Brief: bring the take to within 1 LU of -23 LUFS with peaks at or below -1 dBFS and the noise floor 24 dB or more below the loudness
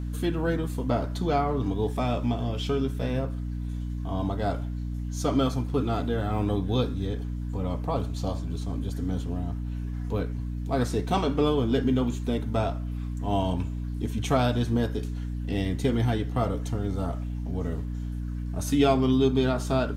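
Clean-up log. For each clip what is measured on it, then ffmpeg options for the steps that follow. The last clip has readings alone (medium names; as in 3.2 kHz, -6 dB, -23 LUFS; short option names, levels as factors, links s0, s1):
hum 60 Hz; highest harmonic 300 Hz; hum level -29 dBFS; loudness -28.0 LUFS; peak level -9.0 dBFS; loudness target -23.0 LUFS
-> -af "bandreject=f=60:t=h:w=6,bandreject=f=120:t=h:w=6,bandreject=f=180:t=h:w=6,bandreject=f=240:t=h:w=6,bandreject=f=300:t=h:w=6"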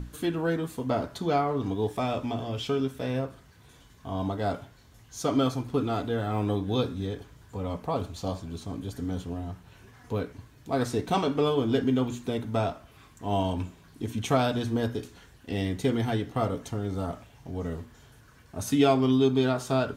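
hum not found; loudness -29.0 LUFS; peak level -10.0 dBFS; loudness target -23.0 LUFS
-> -af "volume=2"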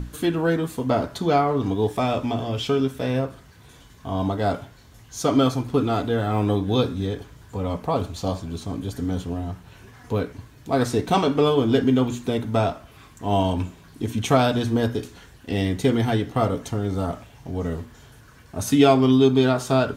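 loudness -23.0 LUFS; peak level -4.0 dBFS; noise floor -49 dBFS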